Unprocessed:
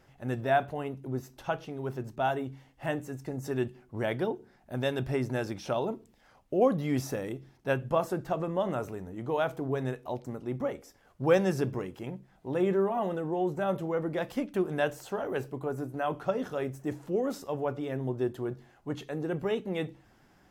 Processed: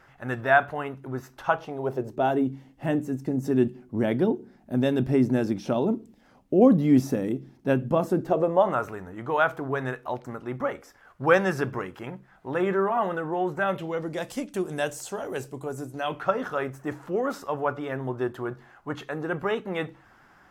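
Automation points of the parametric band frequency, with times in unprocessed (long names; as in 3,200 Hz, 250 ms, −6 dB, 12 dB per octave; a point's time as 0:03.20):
parametric band +13 dB 1.5 octaves
0:01.37 1,400 Hz
0:02.48 240 Hz
0:08.14 240 Hz
0:08.82 1,400 Hz
0:13.57 1,400 Hz
0:14.19 7,800 Hz
0:15.89 7,800 Hz
0:16.30 1,300 Hz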